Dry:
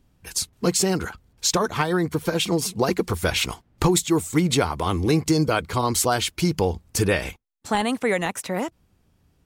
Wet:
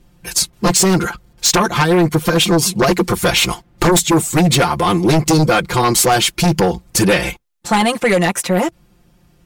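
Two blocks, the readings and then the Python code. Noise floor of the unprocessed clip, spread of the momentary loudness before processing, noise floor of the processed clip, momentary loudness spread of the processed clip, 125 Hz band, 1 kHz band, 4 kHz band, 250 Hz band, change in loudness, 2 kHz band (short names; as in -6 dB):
-64 dBFS, 7 LU, -54 dBFS, 5 LU, +8.0 dB, +9.5 dB, +9.5 dB, +8.0 dB, +8.5 dB, +9.0 dB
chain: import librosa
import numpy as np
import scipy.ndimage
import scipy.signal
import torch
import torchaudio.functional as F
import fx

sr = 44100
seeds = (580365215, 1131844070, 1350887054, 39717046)

y = x + 0.98 * np.pad(x, (int(5.7 * sr / 1000.0), 0))[:len(x)]
y = fx.fold_sine(y, sr, drive_db=10, ceiling_db=-2.5)
y = F.gain(torch.from_numpy(y), -5.5).numpy()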